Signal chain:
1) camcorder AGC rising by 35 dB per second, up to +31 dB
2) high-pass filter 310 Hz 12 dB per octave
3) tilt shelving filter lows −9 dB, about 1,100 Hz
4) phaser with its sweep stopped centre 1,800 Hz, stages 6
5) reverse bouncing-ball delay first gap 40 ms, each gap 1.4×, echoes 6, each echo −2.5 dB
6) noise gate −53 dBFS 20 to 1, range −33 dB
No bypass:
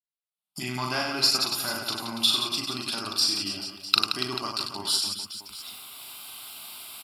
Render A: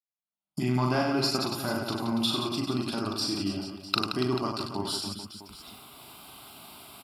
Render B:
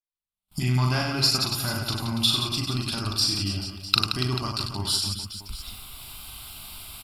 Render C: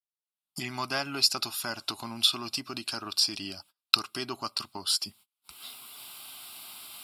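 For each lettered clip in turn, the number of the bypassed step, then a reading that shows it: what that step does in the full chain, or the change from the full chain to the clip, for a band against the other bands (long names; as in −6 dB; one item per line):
3, 8 kHz band −12.0 dB
2, 125 Hz band +16.0 dB
5, change in crest factor +3.5 dB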